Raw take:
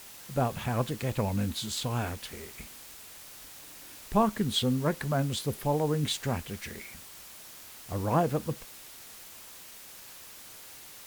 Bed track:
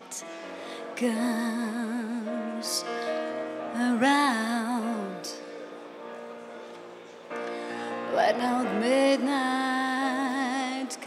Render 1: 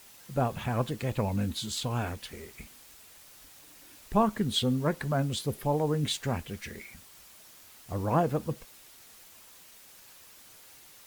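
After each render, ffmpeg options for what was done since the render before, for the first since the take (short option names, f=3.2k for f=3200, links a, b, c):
-af "afftdn=nr=6:nf=-48"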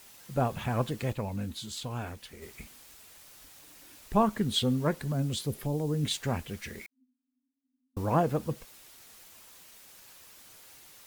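-filter_complex "[0:a]asettb=1/sr,asplit=3[a][b][c];[a]atrim=end=4.994[d];[b]atrim=start=4.99:end=6.11,asetpts=PTS-STARTPTS,afade=t=in:d=0.004:c=qsin,afade=t=out:st=1.116:d=0.004:c=qsin,acrossover=split=440|3000[e][f][g];[f]acompressor=threshold=-43dB:ratio=6:attack=3.2:release=140:knee=2.83:detection=peak[h];[e][h][g]amix=inputs=3:normalize=0[i];[c]atrim=start=6.106[j];[d][i]acrossfade=d=0.004:c1=hsin:c2=qsin[k];[k][j]acrossfade=d=0.004:c1=qsin:c2=hsin,asettb=1/sr,asplit=3[l][m][n];[l]atrim=end=6.864[o];[m]atrim=start=6.86:end=7.97,asetpts=PTS-STARTPTS,afade=t=in:d=0.004:c=qsin,afade=t=out:st=1.106:d=0.004:c=qsin,asuperpass=centerf=260:order=20:qfactor=6.9[p];[n]atrim=start=7.966[q];[o][p]acrossfade=d=0.004:c1=hsin:c2=qsin[r];[r][q]acrossfade=d=0.004:c1=qsin:c2=hsin,asplit=3[s][t][u];[s]atrim=end=1.132[v];[t]atrim=start=1.128:end=2.422,asetpts=PTS-STARTPTS,volume=-5dB[w];[u]atrim=start=2.418[x];[v][w]acrossfade=d=0.004:c1=hsin:c2=hsin[y];[y][x]acrossfade=d=0.004:c1=hsin:c2=hsin"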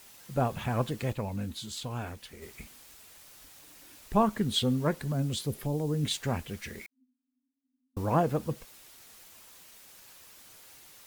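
-af anull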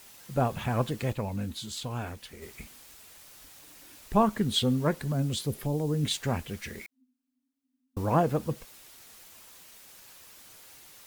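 -af "volume=1.5dB"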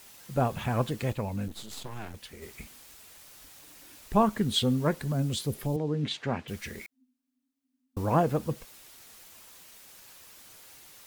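-filter_complex "[0:a]asettb=1/sr,asplit=3[a][b][c];[a]atrim=end=1.484[d];[b]atrim=start=1.48:end=2.14,asetpts=PTS-STARTPTS,afade=t=in:d=0.004:c=qsin,afade=t=out:st=0.656:d=0.004:c=qsin,aeval=exprs='max(val(0),0)':c=same[e];[c]atrim=start=2.136[f];[d][e]acrossfade=d=0.004:c1=hsin:c2=qsin[g];[g][f]acrossfade=d=0.004:c1=qsin:c2=hsin,asettb=1/sr,asplit=3[h][i][j];[h]atrim=end=5.764[k];[i]atrim=start=5.76:end=6.48,asetpts=PTS-STARTPTS,afade=t=in:d=0.004:c=qsin,afade=t=out:st=0.716:d=0.004:c=qsin,highpass=140,lowpass=3.6k[l];[j]atrim=start=6.476[m];[k][l]acrossfade=d=0.004:c1=hsin:c2=qsin[n];[n][m]acrossfade=d=0.004:c1=qsin:c2=hsin"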